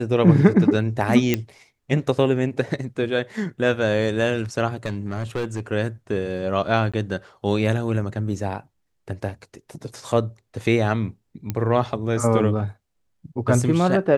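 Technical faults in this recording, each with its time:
1.34 s: pop -6 dBFS
4.85–5.60 s: clipped -20.5 dBFS
6.92–6.94 s: dropout 16 ms
11.50 s: pop -12 dBFS

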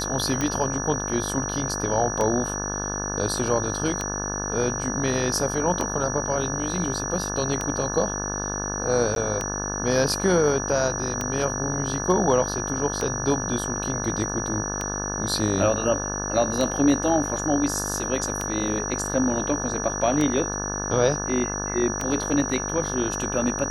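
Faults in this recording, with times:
buzz 50 Hz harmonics 35 -31 dBFS
tick 33 1/3 rpm -11 dBFS
whine 5.8 kHz -30 dBFS
9.15–9.16 s: dropout 12 ms

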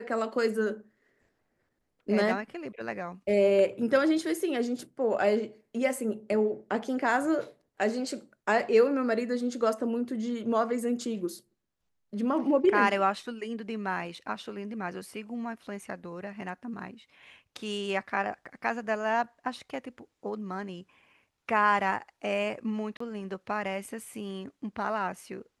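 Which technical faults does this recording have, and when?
22.97–23.00 s: dropout 34 ms

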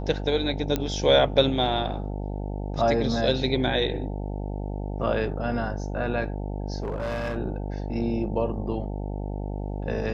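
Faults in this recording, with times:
buzz 50 Hz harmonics 18 -31 dBFS
0.76 s: pop -11 dBFS
6.82–7.38 s: clipped -25 dBFS

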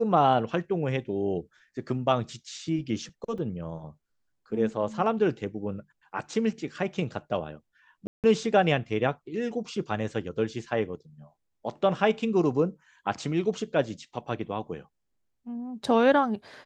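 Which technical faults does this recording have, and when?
3.38 s: dropout 4 ms
8.07–8.24 s: dropout 168 ms

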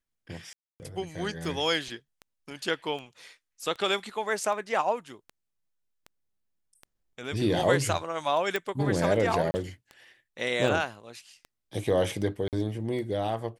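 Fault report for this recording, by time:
tick 78 rpm
0.53–0.80 s: dropout 269 ms
8.56 s: pop
9.51–9.54 s: dropout 30 ms
12.48–12.53 s: dropout 48 ms

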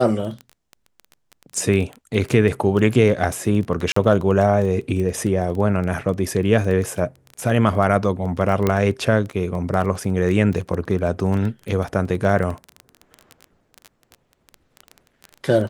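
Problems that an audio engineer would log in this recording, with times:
crackle 14 per s -25 dBFS
3.92–3.96 s: dropout 44 ms
8.67 s: pop -6 dBFS

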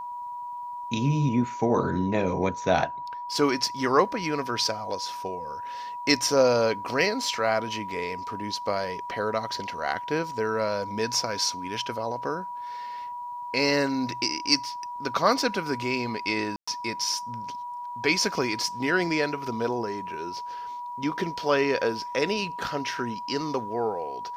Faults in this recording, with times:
whine 970 Hz -33 dBFS
16.56–16.68 s: dropout 115 ms

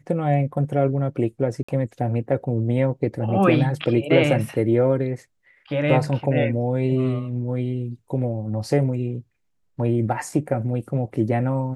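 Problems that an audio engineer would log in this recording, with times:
1.63–1.69 s: dropout 55 ms

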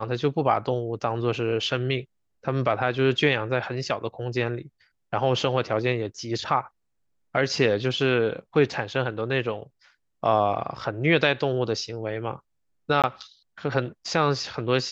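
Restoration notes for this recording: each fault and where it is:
13.02–13.04 s: dropout 17 ms

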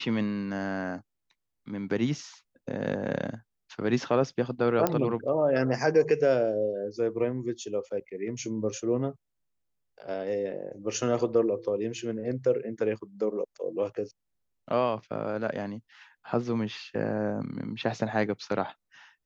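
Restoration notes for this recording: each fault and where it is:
4.87 s: pop -10 dBFS

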